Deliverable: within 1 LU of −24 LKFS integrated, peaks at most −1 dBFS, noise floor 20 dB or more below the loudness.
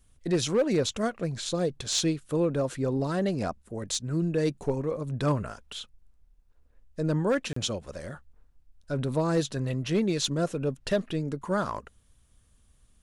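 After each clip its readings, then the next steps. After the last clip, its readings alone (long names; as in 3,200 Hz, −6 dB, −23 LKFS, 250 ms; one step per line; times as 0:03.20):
share of clipped samples 0.3%; peaks flattened at −18.0 dBFS; number of dropouts 1; longest dropout 34 ms; integrated loudness −29.0 LKFS; sample peak −18.0 dBFS; target loudness −24.0 LKFS
→ clipped peaks rebuilt −18 dBFS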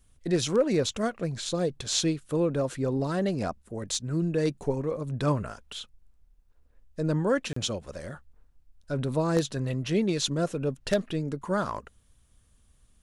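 share of clipped samples 0.0%; number of dropouts 1; longest dropout 34 ms
→ repair the gap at 0:07.53, 34 ms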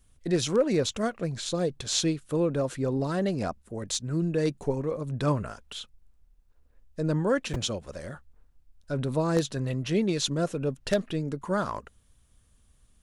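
number of dropouts 0; integrated loudness −28.5 LKFS; sample peak −9.5 dBFS; target loudness −24.0 LKFS
→ level +4.5 dB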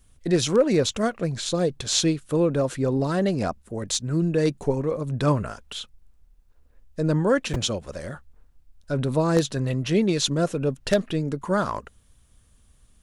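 integrated loudness −24.0 LKFS; sample peak −5.0 dBFS; background noise floor −58 dBFS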